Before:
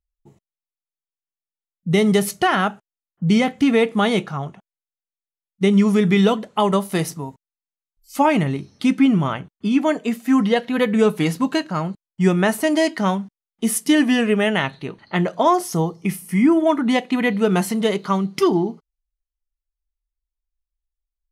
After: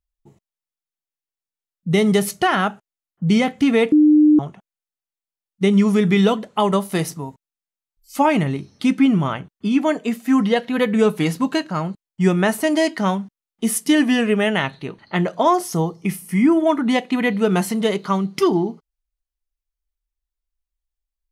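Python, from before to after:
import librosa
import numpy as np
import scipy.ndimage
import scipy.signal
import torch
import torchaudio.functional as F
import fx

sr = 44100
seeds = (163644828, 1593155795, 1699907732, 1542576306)

y = fx.edit(x, sr, fx.bleep(start_s=3.92, length_s=0.47, hz=302.0, db=-8.5), tone=tone)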